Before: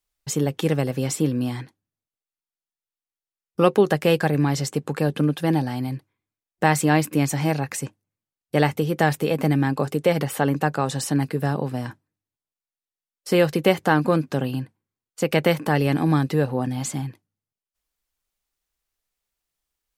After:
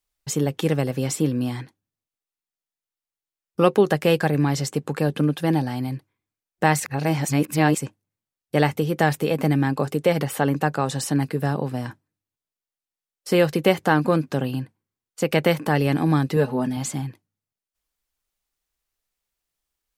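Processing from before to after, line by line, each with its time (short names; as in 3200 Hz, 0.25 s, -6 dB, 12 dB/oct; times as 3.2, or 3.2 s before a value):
6.8–7.78 reverse
16.36–16.77 comb 4.7 ms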